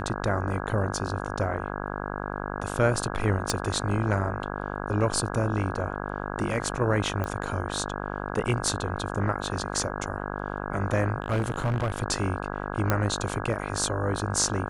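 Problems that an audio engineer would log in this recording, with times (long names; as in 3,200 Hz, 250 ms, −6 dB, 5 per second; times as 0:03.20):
mains buzz 50 Hz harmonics 33 −33 dBFS
0:03.50: click −10 dBFS
0:07.24: click −17 dBFS
0:11.20–0:12.03: clipping −21.5 dBFS
0:12.90: click −9 dBFS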